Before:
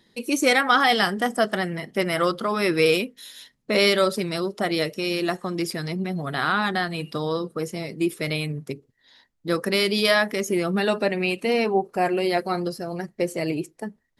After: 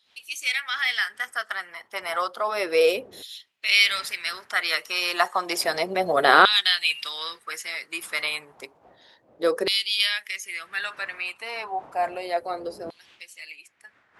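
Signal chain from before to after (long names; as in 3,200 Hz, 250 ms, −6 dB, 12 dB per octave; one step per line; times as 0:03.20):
source passing by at 0:06.37, 6 m/s, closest 6 metres
wind on the microphone 83 Hz −29 dBFS
auto-filter high-pass saw down 0.31 Hz 430–3,500 Hz
level +8 dB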